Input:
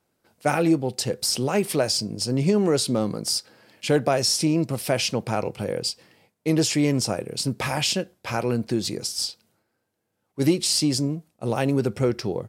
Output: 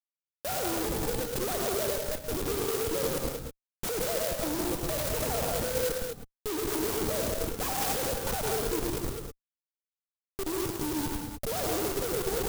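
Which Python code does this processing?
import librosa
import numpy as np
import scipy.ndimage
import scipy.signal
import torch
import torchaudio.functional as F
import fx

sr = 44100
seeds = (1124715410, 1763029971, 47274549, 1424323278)

y = fx.sine_speech(x, sr)
y = scipy.signal.sosfilt(scipy.signal.butter(2, 710.0, 'highpass', fs=sr, output='sos'), y)
y = fx.quant_dither(y, sr, seeds[0], bits=6, dither='none')
y = fx.echo_alternate(y, sr, ms=107, hz=2300.0, feedback_pct=57, wet_db=-5.5)
y = fx.schmitt(y, sr, flips_db=-35.0)
y = fx.vibrato(y, sr, rate_hz=3.5, depth_cents=57.0)
y = fx.rev_gated(y, sr, seeds[1], gate_ms=230, shape='rising', drr_db=2.0)
y = fx.clock_jitter(y, sr, seeds[2], jitter_ms=0.13)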